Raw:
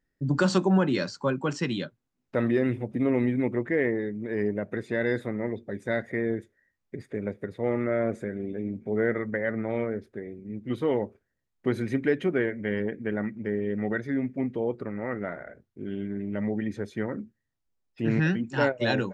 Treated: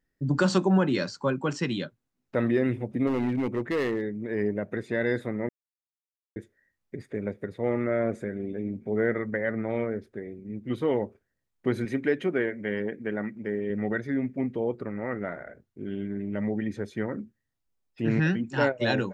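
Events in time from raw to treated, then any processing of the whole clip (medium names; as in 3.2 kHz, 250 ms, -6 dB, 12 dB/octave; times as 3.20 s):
3.07–4.03 s: hard clipper -22.5 dBFS
5.49–6.36 s: mute
11.85–13.70 s: high-pass 180 Hz 6 dB/octave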